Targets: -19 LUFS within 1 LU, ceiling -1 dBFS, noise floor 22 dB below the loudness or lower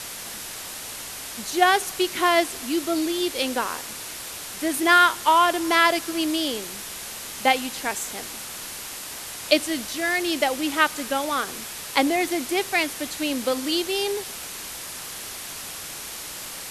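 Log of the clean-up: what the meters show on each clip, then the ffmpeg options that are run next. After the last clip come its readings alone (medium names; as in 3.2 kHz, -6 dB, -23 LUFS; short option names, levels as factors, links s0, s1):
noise floor -36 dBFS; noise floor target -46 dBFS; loudness -24.0 LUFS; peak level -2.5 dBFS; loudness target -19.0 LUFS
-> -af "afftdn=nr=10:nf=-36"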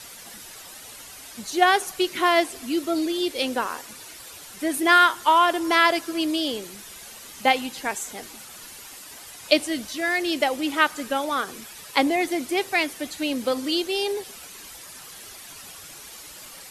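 noise floor -43 dBFS; noise floor target -45 dBFS
-> -af "afftdn=nr=6:nf=-43"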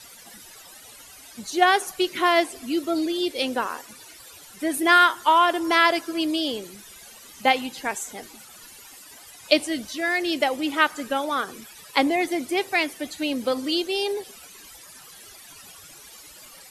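noise floor -47 dBFS; loudness -23.0 LUFS; peak level -2.5 dBFS; loudness target -19.0 LUFS
-> -af "volume=1.58,alimiter=limit=0.891:level=0:latency=1"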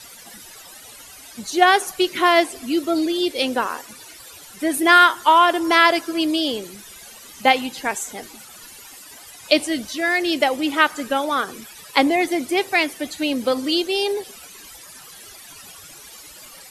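loudness -19.0 LUFS; peak level -1.0 dBFS; noise floor -43 dBFS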